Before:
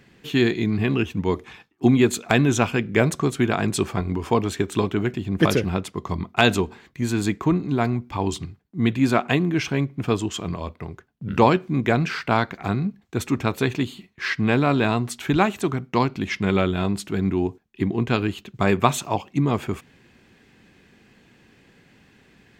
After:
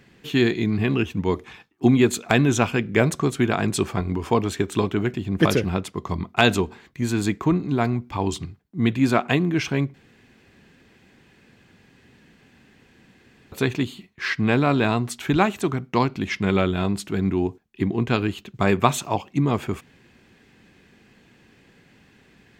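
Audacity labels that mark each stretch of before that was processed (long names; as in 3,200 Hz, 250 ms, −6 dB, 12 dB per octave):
9.940000	13.520000	fill with room tone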